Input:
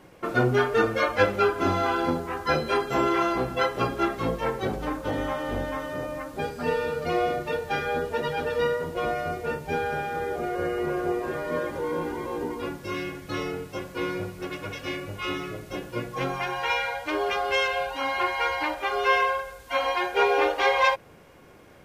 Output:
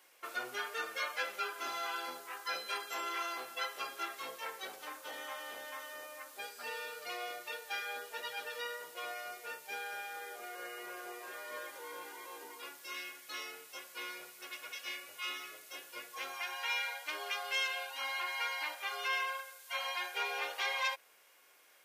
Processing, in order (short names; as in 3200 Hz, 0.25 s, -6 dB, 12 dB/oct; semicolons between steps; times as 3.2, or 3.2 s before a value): tone controls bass -14 dB, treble -5 dB; in parallel at +1.5 dB: limiter -18.5 dBFS, peak gain reduction 10 dB; on the sum: differentiator; gain -3 dB